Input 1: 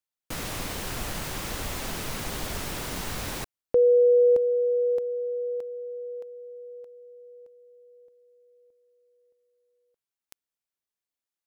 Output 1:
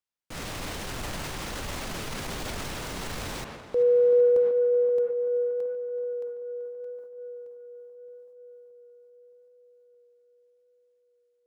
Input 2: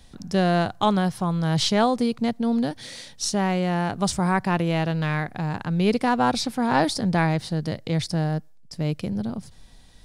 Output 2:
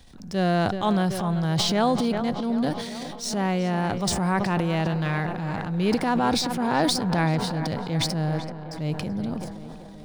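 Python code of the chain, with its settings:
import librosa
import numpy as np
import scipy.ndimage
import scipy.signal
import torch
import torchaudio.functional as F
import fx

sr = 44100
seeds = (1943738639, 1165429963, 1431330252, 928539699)

y = scipy.signal.medfilt(x, 3)
y = fx.echo_tape(y, sr, ms=382, feedback_pct=77, wet_db=-12, lp_hz=2700.0, drive_db=7.0, wow_cents=19)
y = fx.transient(y, sr, attack_db=-5, sustain_db=8)
y = F.gain(torch.from_numpy(y), -1.5).numpy()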